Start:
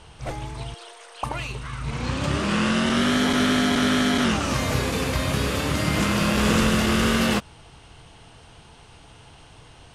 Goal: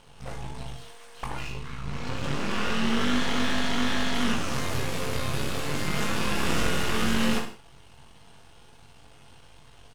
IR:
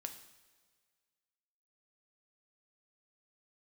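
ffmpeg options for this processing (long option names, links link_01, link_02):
-filter_complex "[0:a]asettb=1/sr,asplit=3[link_01][link_02][link_03];[link_01]atrim=end=1.414[link_04];[link_02]atrim=start=1.41:end=4.14,asetpts=PTS-STARTPTS,afade=type=in:duration=0.004:curve=qsin,afade=type=out:start_time=2.726:duration=0.004:curve=qsin,lowpass=7500[link_05];[link_03]atrim=start=4.136[link_06];[link_04][link_05]acrossfade=duration=0.004:curve1=hsin:curve2=qsin[link_07];[link_07][link_06]acrossfade=duration=0.004:curve1=qsin:curve2=hsin,aeval=exprs='max(val(0),0)':channel_layout=same,aecho=1:1:21|62:0.501|0.335[link_08];[1:a]atrim=start_sample=2205,afade=type=out:start_time=0.21:duration=0.01,atrim=end_sample=9702[link_09];[link_08][link_09]afir=irnorm=-1:irlink=0"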